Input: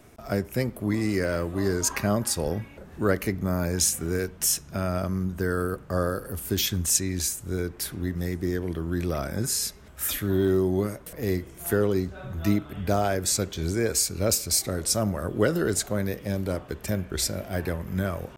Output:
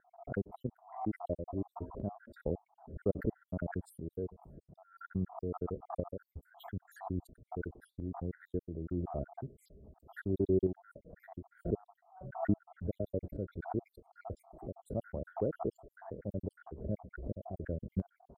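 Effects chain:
time-frequency cells dropped at random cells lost 68%
inverse Chebyshev low-pass filter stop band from 2,400 Hz, stop band 60 dB
shaped tremolo saw up 1.5 Hz, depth 60%
background raised ahead of every attack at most 120 dB per second
level −4 dB

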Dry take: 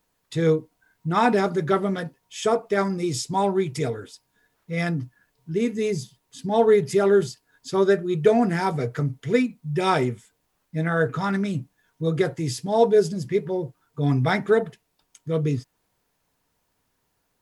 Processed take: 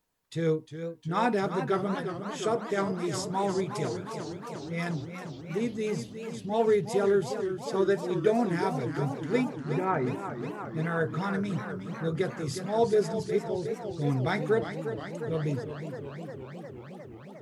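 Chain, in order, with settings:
0:09.44–0:10.07: Butterworth low-pass 2,100 Hz
feedback echo with a swinging delay time 358 ms, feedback 78%, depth 121 cents, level −9.5 dB
level −7 dB

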